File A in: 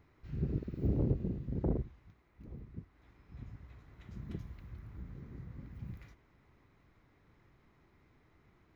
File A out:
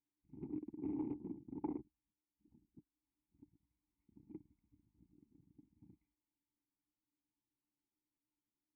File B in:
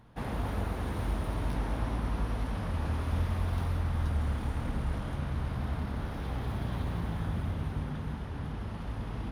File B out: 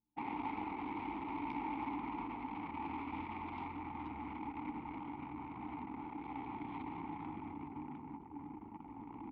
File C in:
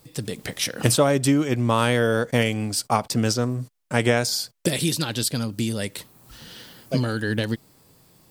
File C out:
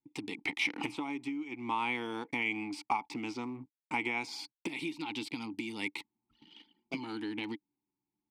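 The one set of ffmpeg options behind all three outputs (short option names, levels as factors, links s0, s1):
-filter_complex "[0:a]anlmdn=1,acrossover=split=2500[s0][s1];[s1]acompressor=threshold=0.0251:ratio=4:attack=1:release=60[s2];[s0][s2]amix=inputs=2:normalize=0,asplit=3[s3][s4][s5];[s3]bandpass=f=300:t=q:w=8,volume=1[s6];[s4]bandpass=f=870:t=q:w=8,volume=0.501[s7];[s5]bandpass=f=2240:t=q:w=8,volume=0.355[s8];[s6][s7][s8]amix=inputs=3:normalize=0,acompressor=threshold=0.01:ratio=10,tiltshelf=f=700:g=-9.5,volume=3.35"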